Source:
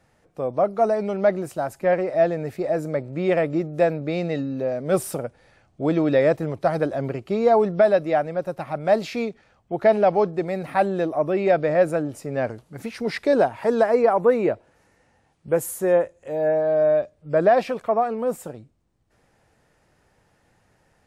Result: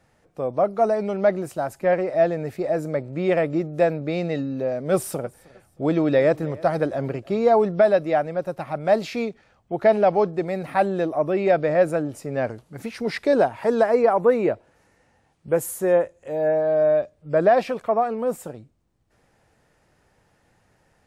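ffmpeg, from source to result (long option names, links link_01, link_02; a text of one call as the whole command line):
ffmpeg -i in.wav -filter_complex "[0:a]asettb=1/sr,asplit=3[link_01][link_02][link_03];[link_01]atrim=end=4.924[link_04];[link_02]atrim=start=4.92:end=7.4,asetpts=PTS-STARTPTS,afade=type=in:duration=0.004:curve=qsin,afade=type=out:start_time=2.476:duration=0.004:curve=qsin,aecho=1:1:313|626:0.0708|0.0227,atrim=end_sample=109368[link_05];[link_03]atrim=start=7.396[link_06];[link_04][link_05]acrossfade=duration=0.004:curve1=hsin:curve2=qsin[link_07];[link_07][link_06]acrossfade=duration=0.004:curve1=qsin:curve2=hsin" out.wav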